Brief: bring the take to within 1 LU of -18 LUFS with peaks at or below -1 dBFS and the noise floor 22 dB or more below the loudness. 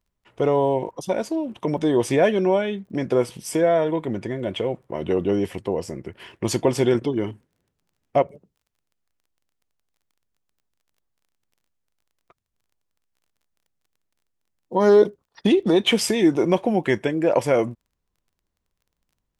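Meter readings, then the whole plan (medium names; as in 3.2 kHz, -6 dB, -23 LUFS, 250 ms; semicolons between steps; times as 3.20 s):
tick rate 23 per s; loudness -22.0 LUFS; peak level -6.0 dBFS; loudness target -18.0 LUFS
-> de-click; trim +4 dB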